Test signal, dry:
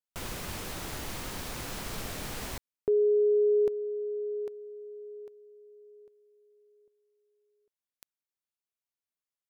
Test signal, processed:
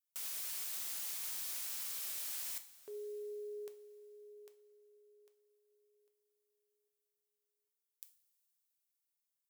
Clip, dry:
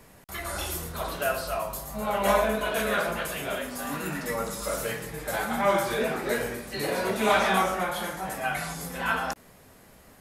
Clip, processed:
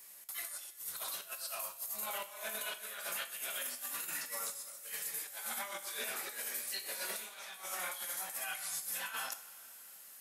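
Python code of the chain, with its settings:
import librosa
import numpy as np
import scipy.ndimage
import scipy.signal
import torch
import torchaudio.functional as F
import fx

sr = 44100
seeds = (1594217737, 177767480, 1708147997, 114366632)

y = np.diff(x, prepend=0.0)
y = fx.over_compress(y, sr, threshold_db=-42.0, ratio=-0.5)
y = fx.rev_double_slope(y, sr, seeds[0], early_s=0.4, late_s=4.0, knee_db=-18, drr_db=7.0)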